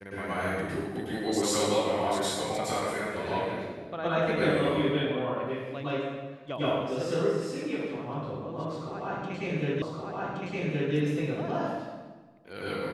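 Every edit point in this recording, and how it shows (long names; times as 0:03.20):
0:09.82: the same again, the last 1.12 s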